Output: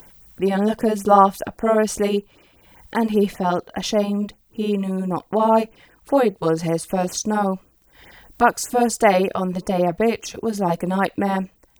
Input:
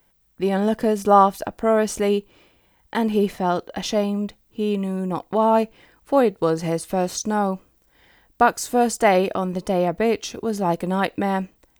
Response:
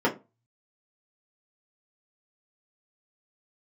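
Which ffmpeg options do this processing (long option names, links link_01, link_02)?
-af "acompressor=mode=upward:threshold=-37dB:ratio=2.5,afftfilt=real='re*(1-between(b*sr/1024,270*pow(4600/270,0.5+0.5*sin(2*PI*5.1*pts/sr))/1.41,270*pow(4600/270,0.5+0.5*sin(2*PI*5.1*pts/sr))*1.41))':imag='im*(1-between(b*sr/1024,270*pow(4600/270,0.5+0.5*sin(2*PI*5.1*pts/sr))/1.41,270*pow(4600/270,0.5+0.5*sin(2*PI*5.1*pts/sr))*1.41))':win_size=1024:overlap=0.75,volume=2dB"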